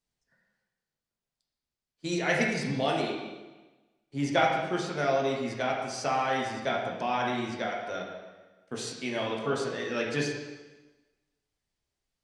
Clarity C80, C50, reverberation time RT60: 4.5 dB, 2.0 dB, 1.2 s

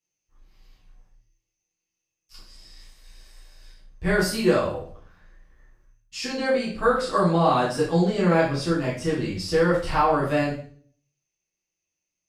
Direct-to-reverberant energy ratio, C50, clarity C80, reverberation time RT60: -8.5 dB, 5.0 dB, 9.5 dB, 0.50 s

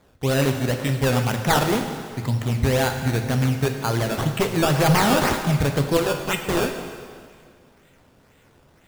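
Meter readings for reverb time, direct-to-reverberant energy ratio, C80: 2.0 s, 5.0 dB, 8.0 dB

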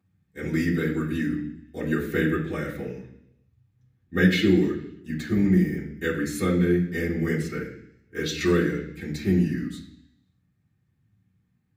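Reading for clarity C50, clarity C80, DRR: 7.0 dB, 11.0 dB, -10.0 dB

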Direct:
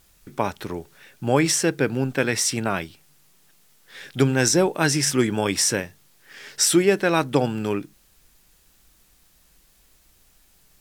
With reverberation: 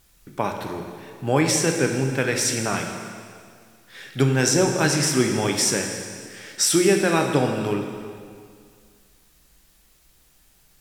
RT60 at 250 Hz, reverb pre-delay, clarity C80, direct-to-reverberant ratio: 2.2 s, 4 ms, 5.5 dB, 2.5 dB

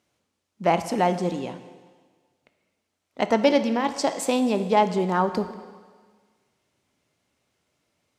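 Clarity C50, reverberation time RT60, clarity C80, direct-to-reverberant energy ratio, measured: 11.5 dB, 1.5 s, 13.0 dB, 10.0 dB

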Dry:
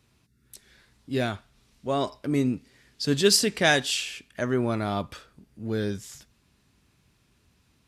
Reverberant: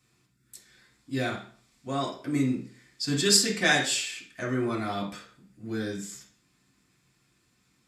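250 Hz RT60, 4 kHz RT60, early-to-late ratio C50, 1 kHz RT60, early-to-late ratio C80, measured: 0.40 s, 0.40 s, 7.5 dB, 0.45 s, 12.0 dB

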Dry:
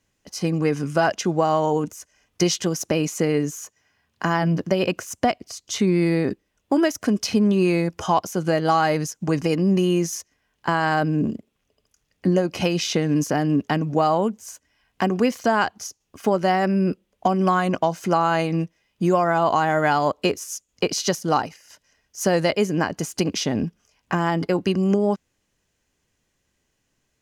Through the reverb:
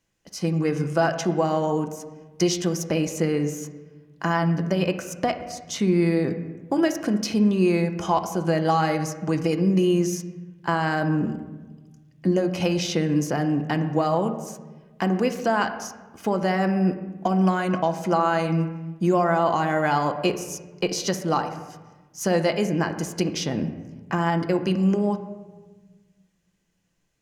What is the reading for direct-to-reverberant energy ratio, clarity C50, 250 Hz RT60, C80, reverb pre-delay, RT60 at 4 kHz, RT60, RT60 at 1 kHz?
6.5 dB, 10.0 dB, 1.9 s, 11.5 dB, 6 ms, 0.80 s, 1.2 s, 1.2 s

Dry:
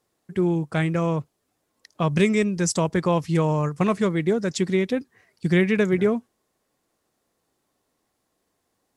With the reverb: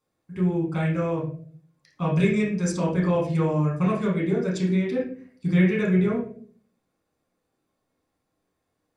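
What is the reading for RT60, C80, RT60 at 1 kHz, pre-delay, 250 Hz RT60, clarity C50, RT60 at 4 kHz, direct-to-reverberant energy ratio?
0.50 s, 10.0 dB, 0.40 s, 7 ms, 0.70 s, 5.5 dB, 0.30 s, -4.5 dB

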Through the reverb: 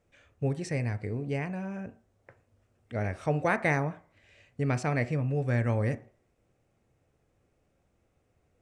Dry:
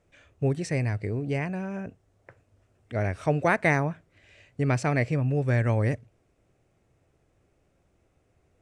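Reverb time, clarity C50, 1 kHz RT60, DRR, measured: 0.45 s, 17.0 dB, 0.45 s, 10.5 dB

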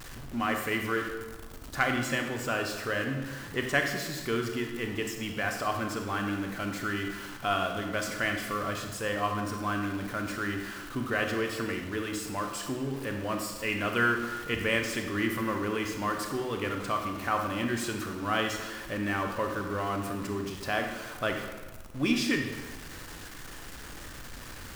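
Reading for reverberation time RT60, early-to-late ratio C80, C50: 1.3 s, 7.0 dB, 5.5 dB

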